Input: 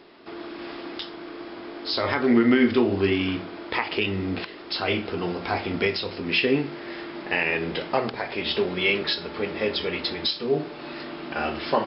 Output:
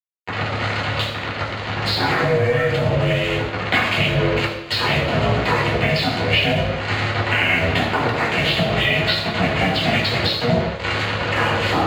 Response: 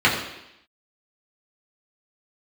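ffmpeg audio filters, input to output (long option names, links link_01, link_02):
-filter_complex "[0:a]acrusher=bits=4:mix=0:aa=0.5,alimiter=limit=-15.5dB:level=0:latency=1,acompressor=threshold=-36dB:ratio=10,aeval=exprs='val(0)*sin(2*PI*240*n/s)':channel_layout=same[link_01];[1:a]atrim=start_sample=2205,asetrate=42777,aresample=44100[link_02];[link_01][link_02]afir=irnorm=-1:irlink=0,volume=3.5dB"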